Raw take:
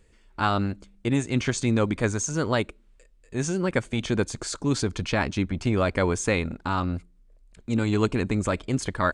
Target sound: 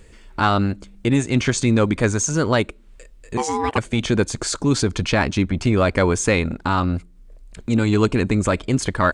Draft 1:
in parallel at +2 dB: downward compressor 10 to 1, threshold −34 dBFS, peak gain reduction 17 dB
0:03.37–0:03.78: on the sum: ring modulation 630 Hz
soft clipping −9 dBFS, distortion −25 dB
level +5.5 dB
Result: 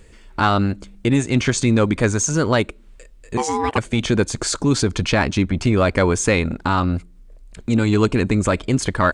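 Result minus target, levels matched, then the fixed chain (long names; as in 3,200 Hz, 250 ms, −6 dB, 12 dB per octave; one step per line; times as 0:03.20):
downward compressor: peak gain reduction −6.5 dB
in parallel at +2 dB: downward compressor 10 to 1, threshold −41 dBFS, peak gain reduction 23.5 dB
0:03.37–0:03.78: on the sum: ring modulation 630 Hz
soft clipping −9 dBFS, distortion −26 dB
level +5.5 dB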